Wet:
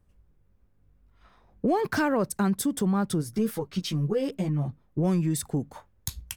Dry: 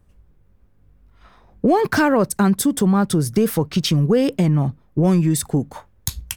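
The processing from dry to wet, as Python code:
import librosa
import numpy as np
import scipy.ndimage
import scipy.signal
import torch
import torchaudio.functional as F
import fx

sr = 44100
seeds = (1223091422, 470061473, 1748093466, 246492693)

y = fx.ensemble(x, sr, at=(3.21, 4.67), fade=0.02)
y = y * 10.0 ** (-8.5 / 20.0)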